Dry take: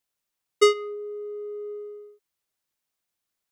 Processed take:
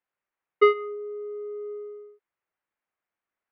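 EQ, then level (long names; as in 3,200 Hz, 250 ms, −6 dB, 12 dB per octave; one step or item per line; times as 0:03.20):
low-pass filter 2,200 Hz 24 dB per octave
low-shelf EQ 280 Hz −10.5 dB
+3.0 dB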